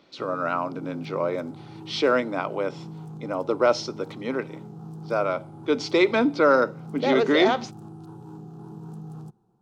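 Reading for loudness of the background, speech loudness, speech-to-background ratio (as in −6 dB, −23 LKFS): −41.5 LKFS, −24.5 LKFS, 17.0 dB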